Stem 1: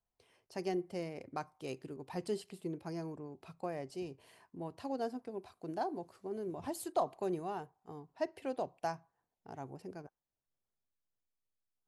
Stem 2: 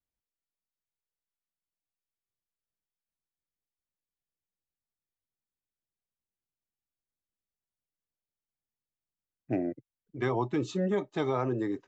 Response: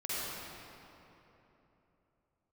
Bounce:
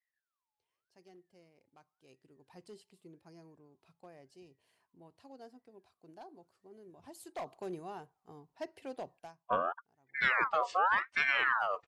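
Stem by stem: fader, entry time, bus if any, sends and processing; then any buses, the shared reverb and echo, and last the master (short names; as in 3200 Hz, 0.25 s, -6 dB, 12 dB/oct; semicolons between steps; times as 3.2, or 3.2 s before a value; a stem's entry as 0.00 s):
1.93 s -23 dB -> 2.48 s -15 dB -> 6.97 s -15 dB -> 7.52 s -5 dB, 0.40 s, no send, hard clip -29 dBFS, distortion -18 dB; auto duck -23 dB, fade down 0.35 s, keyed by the second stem
-3.0 dB, 0.00 s, no send, tone controls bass +9 dB, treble -5 dB; ring modulator with a swept carrier 1400 Hz, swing 40%, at 0.89 Hz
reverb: off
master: bell 4700 Hz +4 dB 2.7 oct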